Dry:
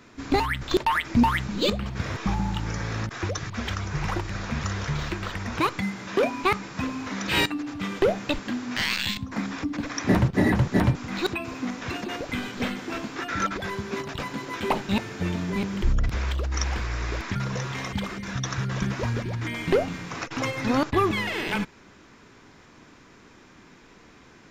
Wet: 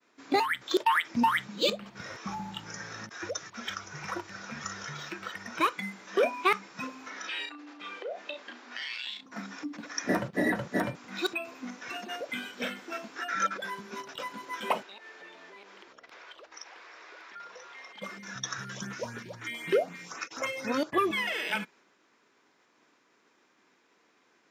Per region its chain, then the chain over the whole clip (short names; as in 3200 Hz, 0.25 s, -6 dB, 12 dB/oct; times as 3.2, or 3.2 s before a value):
7.1–9.26 three-band isolator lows -23 dB, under 250 Hz, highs -18 dB, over 6300 Hz + doubler 34 ms -6 dB + compressor 8:1, threshold -29 dBFS
14.83–18.02 three-band isolator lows -23 dB, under 350 Hz, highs -13 dB, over 5600 Hz + compressor 4:1, threshold -36 dBFS
18.67–21.12 LFO notch saw up 3.9 Hz 510–5900 Hz + mismatched tape noise reduction encoder only
whole clip: HPF 350 Hz 12 dB/oct; expander -50 dBFS; spectral noise reduction 9 dB; gain -1 dB